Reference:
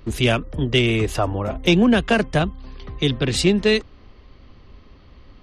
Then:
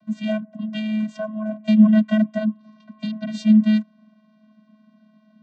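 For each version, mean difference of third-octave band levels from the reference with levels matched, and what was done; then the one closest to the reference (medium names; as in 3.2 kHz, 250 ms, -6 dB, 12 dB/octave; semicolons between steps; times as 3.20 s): 13.0 dB: vocoder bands 16, square 215 Hz; trim +1 dB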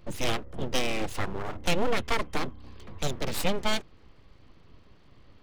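7.0 dB: full-wave rectifier; trim -7 dB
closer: second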